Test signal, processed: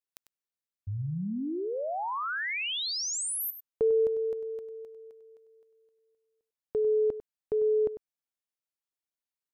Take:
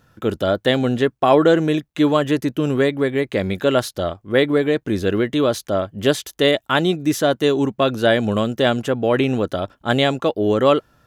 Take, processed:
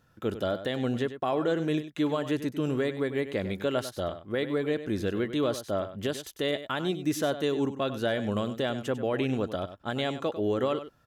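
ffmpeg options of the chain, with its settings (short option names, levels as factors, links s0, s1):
-af "alimiter=limit=0.355:level=0:latency=1:release=197,aecho=1:1:98:0.251,volume=0.355"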